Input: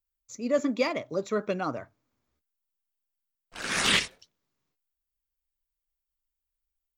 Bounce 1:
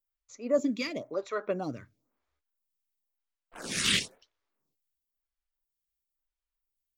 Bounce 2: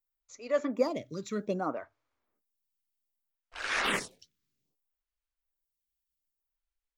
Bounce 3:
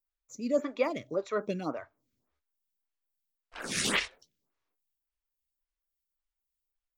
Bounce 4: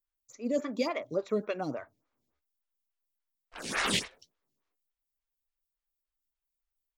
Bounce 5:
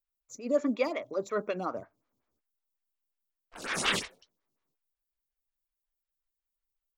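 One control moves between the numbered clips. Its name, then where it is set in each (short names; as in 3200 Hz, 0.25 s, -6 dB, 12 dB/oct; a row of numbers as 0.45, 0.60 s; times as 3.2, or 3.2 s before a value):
photocell phaser, rate: 0.98, 0.63, 1.8, 3.5, 5.5 Hz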